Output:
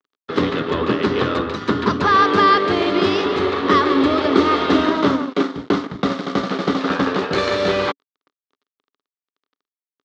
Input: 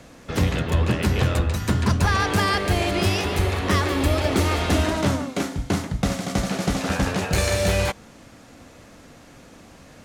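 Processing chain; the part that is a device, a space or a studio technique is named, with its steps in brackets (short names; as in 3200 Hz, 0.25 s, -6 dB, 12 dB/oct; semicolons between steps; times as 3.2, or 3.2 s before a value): blown loudspeaker (crossover distortion -37 dBFS; speaker cabinet 220–4400 Hz, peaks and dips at 280 Hz +7 dB, 410 Hz +8 dB, 710 Hz -4 dB, 1200 Hz +9 dB, 2500 Hz -5 dB, 3600 Hz +3 dB); gain +4.5 dB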